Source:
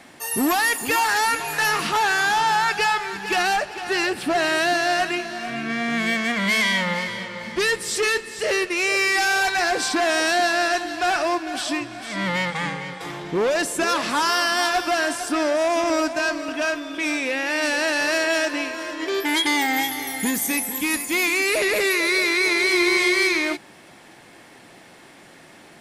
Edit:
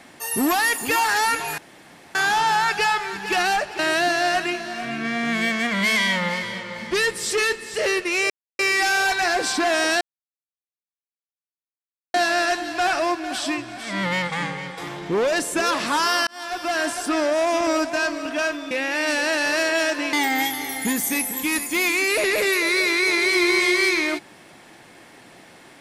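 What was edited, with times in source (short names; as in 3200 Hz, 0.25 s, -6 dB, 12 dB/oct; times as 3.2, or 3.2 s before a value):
1.58–2.15 room tone
3.79–4.44 cut
8.95 insert silence 0.29 s
10.37 insert silence 2.13 s
14.5–15.09 fade in
16.94–17.26 cut
18.68–19.51 cut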